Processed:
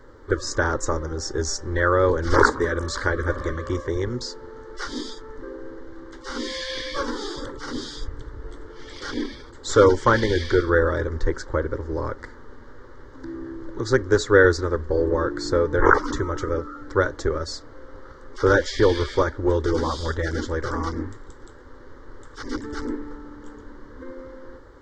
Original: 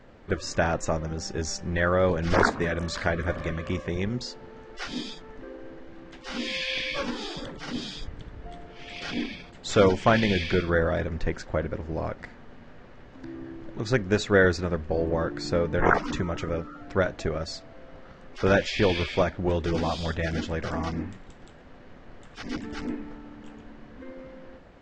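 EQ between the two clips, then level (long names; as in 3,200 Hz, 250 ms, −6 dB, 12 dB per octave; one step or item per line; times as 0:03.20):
phaser with its sweep stopped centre 690 Hz, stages 6
+7.0 dB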